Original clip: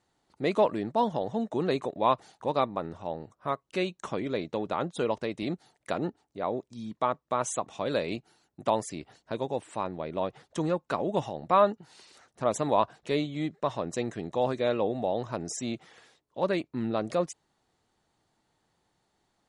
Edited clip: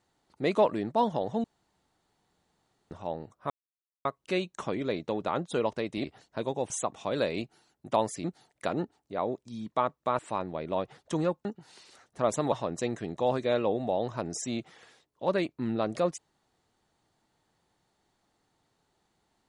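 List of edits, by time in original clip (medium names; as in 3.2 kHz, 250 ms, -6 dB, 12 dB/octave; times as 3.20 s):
1.44–2.91 s: room tone
3.50 s: insert silence 0.55 s
5.49–7.44 s: swap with 8.98–9.64 s
10.90–11.67 s: delete
12.74–13.67 s: delete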